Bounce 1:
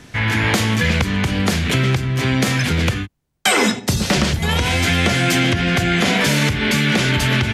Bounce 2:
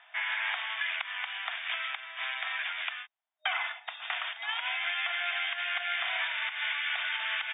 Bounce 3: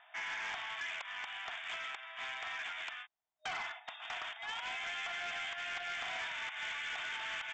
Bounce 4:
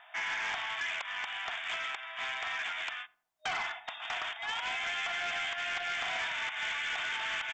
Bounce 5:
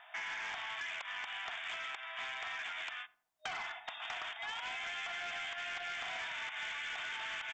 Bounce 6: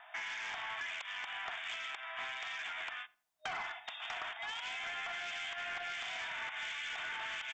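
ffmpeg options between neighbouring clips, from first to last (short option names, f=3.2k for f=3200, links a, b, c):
-filter_complex "[0:a]acrossover=split=1000|2800[a][b][c];[a]acompressor=threshold=-31dB:ratio=4[d];[b]acompressor=threshold=-22dB:ratio=4[e];[c]acompressor=threshold=-28dB:ratio=4[f];[d][e][f]amix=inputs=3:normalize=0,afftfilt=real='re*between(b*sr/4096,620,3700)':imag='im*between(b*sr/4096,620,3700)':win_size=4096:overlap=0.75,volume=-8.5dB"
-af "equalizer=f=2.8k:w=0.35:g=-9,aresample=16000,asoftclip=type=tanh:threshold=-38dB,aresample=44100,volume=3dB"
-filter_complex "[0:a]asplit=2[a][b];[b]adelay=86,lowpass=f=800:p=1,volume=-17dB,asplit=2[c][d];[d]adelay=86,lowpass=f=800:p=1,volume=0.48,asplit=2[e][f];[f]adelay=86,lowpass=f=800:p=1,volume=0.48,asplit=2[g][h];[h]adelay=86,lowpass=f=800:p=1,volume=0.48[i];[a][c][e][g][i]amix=inputs=5:normalize=0,volume=5.5dB"
-af "acompressor=threshold=-38dB:ratio=6,volume=-1dB"
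-filter_complex "[0:a]acrossover=split=2200[a][b];[a]aeval=exprs='val(0)*(1-0.5/2+0.5/2*cos(2*PI*1.4*n/s))':c=same[c];[b]aeval=exprs='val(0)*(1-0.5/2-0.5/2*cos(2*PI*1.4*n/s))':c=same[d];[c][d]amix=inputs=2:normalize=0,volume=2.5dB"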